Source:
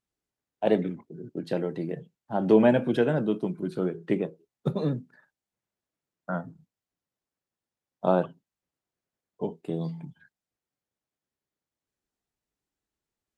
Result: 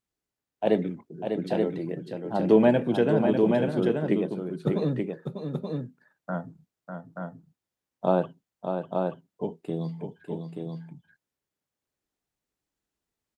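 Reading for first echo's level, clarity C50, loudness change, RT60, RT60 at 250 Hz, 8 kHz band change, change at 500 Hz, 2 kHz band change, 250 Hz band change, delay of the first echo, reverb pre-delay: -7.0 dB, no reverb, +0.5 dB, no reverb, no reverb, no reading, +2.0 dB, 0.0 dB, +2.0 dB, 598 ms, no reverb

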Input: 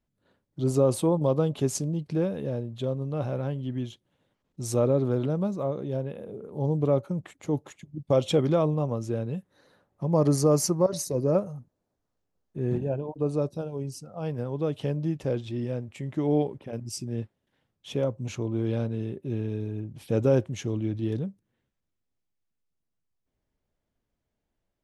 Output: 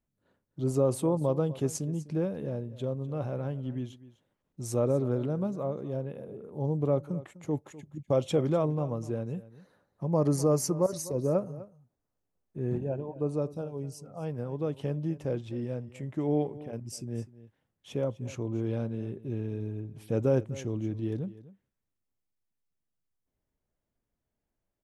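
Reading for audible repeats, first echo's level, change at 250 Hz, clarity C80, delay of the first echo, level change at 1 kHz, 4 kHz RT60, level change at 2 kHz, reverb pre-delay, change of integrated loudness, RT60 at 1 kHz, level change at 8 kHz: 1, -17.5 dB, -3.5 dB, no reverb, 251 ms, -3.5 dB, no reverb, -4.5 dB, no reverb, -3.5 dB, no reverb, -4.5 dB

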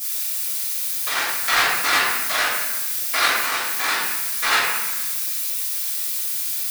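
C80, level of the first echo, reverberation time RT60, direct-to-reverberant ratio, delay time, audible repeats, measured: 2.0 dB, no echo, 1.3 s, -13.5 dB, no echo, no echo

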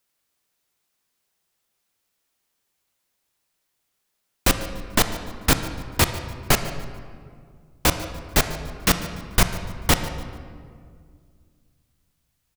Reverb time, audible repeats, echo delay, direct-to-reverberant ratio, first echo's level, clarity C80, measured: 2.1 s, 1, 146 ms, 8.0 dB, -18.5 dB, 10.0 dB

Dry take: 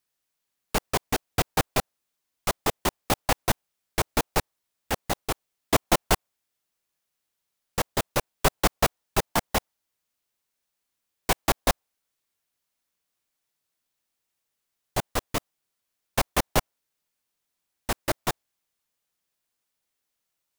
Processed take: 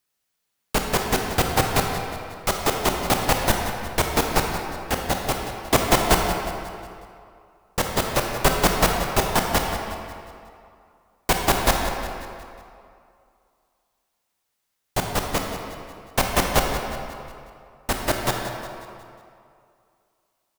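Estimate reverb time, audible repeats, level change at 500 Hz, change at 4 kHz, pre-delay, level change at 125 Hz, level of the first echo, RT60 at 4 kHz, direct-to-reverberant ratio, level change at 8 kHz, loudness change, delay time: 2.4 s, 3, +5.5 dB, +5.0 dB, 23 ms, +5.5 dB, -12.0 dB, 1.7 s, 1.0 dB, +4.5 dB, +4.5 dB, 181 ms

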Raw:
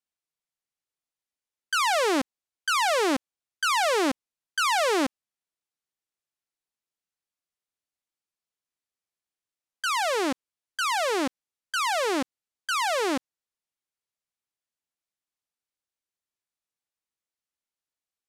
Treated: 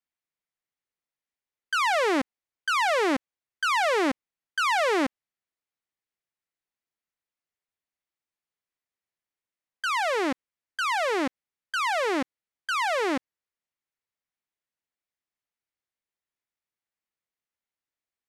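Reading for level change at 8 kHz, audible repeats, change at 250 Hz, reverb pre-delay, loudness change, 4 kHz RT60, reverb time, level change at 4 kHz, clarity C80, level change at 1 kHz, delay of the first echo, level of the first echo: -6.5 dB, no echo, 0.0 dB, no reverb, -0.5 dB, no reverb, no reverb, -3.0 dB, no reverb, 0.0 dB, no echo, no echo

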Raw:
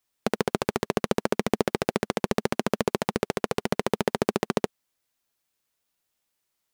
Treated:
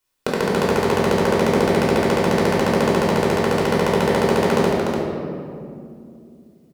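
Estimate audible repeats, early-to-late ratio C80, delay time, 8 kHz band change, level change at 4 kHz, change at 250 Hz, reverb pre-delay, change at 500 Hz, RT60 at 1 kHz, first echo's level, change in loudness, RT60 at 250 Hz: 1, -0.5 dB, 295 ms, +5.5 dB, +7.5 dB, +9.0 dB, 3 ms, +10.0 dB, 2.1 s, -5.0 dB, +9.0 dB, 3.7 s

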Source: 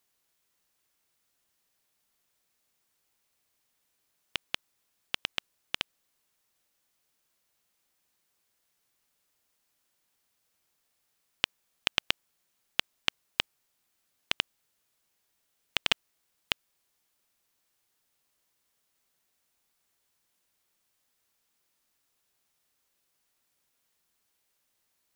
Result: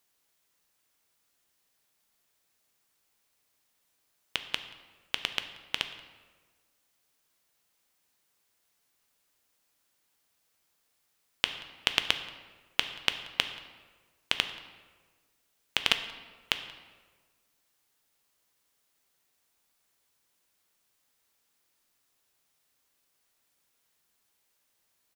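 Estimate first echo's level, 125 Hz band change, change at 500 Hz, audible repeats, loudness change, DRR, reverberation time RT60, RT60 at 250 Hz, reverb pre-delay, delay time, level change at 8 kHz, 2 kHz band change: -23.0 dB, +1.0 dB, +2.0 dB, 1, +2.0 dB, 8.0 dB, 1.4 s, 1.6 s, 5 ms, 181 ms, +2.0 dB, +2.0 dB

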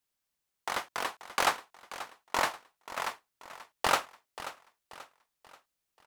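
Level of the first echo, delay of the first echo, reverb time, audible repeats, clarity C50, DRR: -14.5 dB, 534 ms, no reverb, 3, no reverb, no reverb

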